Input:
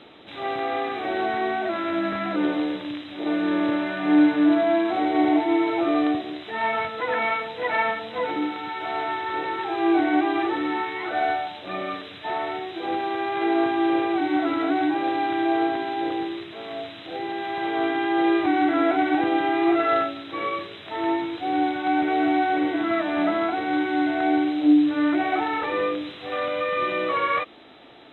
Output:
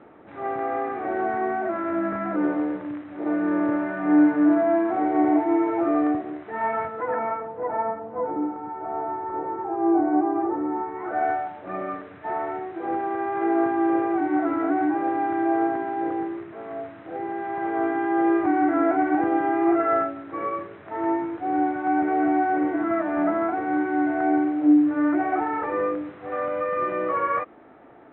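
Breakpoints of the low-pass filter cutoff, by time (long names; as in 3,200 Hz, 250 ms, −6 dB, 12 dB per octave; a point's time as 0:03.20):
low-pass filter 24 dB per octave
0:06.73 1,700 Hz
0:07.72 1,100 Hz
0:10.81 1,100 Hz
0:11.26 1,700 Hz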